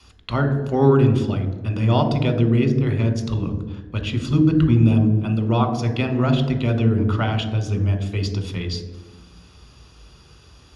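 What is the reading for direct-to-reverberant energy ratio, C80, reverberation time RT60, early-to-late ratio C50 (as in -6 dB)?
6.5 dB, 11.5 dB, 1.2 s, 9.5 dB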